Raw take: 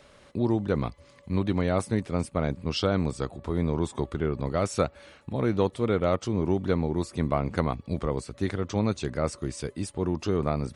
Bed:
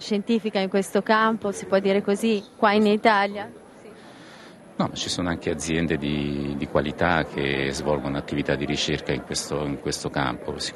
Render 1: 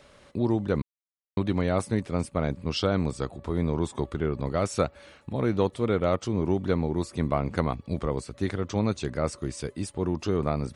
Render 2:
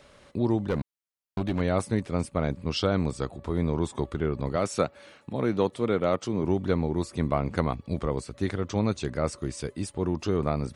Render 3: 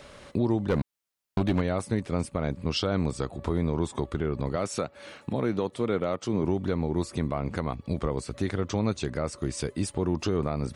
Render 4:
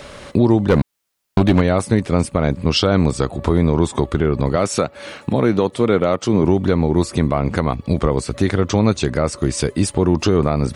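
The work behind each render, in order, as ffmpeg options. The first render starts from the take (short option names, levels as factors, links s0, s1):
-filter_complex "[0:a]asplit=3[s0][s1][s2];[s0]atrim=end=0.82,asetpts=PTS-STARTPTS,afade=t=out:st=0.816:d=0.004:c=hsin[s3];[s1]atrim=start=0.82:end=1.37,asetpts=PTS-STARTPTS,volume=0[s4];[s2]atrim=start=1.37,asetpts=PTS-STARTPTS,afade=t=in:d=0.004:c=hsin[s5];[s3][s4][s5]concat=n=3:v=0:a=1"
-filter_complex "[0:a]asettb=1/sr,asplit=3[s0][s1][s2];[s0]atrim=end=0.674[s3];[s1]atrim=start=0.67:end=1.6,asetpts=PTS-STARTPTS,afade=t=in:d=0.004:c=qsin,afade=t=out:st=0.926:d=0.004:c=qsin,volume=11.9,asoftclip=hard,volume=0.0841[s4];[s2]atrim=start=1.596[s5];[s3][s4]acrossfade=d=0.004:c1=hsin:c2=qsin[s6];[s6][s5]acrossfade=d=0.004:c1=qsin:c2=hsin,asettb=1/sr,asplit=3[s7][s8][s9];[s7]atrim=end=4.564[s10];[s8]atrim=start=4.56:end=6.44,asetpts=PTS-STARTPTS,afade=t=in:d=0.004:c=qsin,afade=t=out:st=1.876:d=0.004:c=qsin,highpass=130[s11];[s9]atrim=start=6.436[s12];[s10][s11]acrossfade=d=0.004:c1=hsin:c2=qsin[s13];[s13][s12]acrossfade=d=0.004:c1=qsin:c2=hsin"
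-filter_complex "[0:a]asplit=2[s0][s1];[s1]acompressor=threshold=0.0224:ratio=6,volume=1.12[s2];[s0][s2]amix=inputs=2:normalize=0,alimiter=limit=0.158:level=0:latency=1:release=257"
-af "volume=3.76"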